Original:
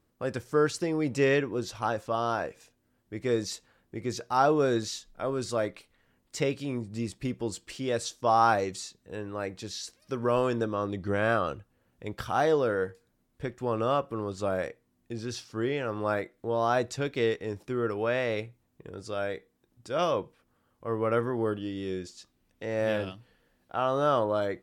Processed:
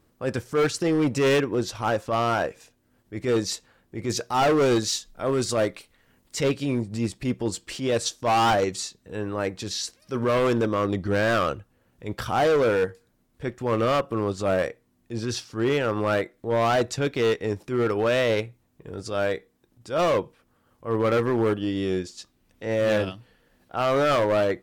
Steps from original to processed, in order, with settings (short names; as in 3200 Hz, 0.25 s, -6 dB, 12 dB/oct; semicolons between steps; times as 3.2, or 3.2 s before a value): transient shaper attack -8 dB, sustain -4 dB; 4.05–6.43 high shelf 4500 Hz +5 dB; hard clip -26.5 dBFS, distortion -9 dB; gain +9 dB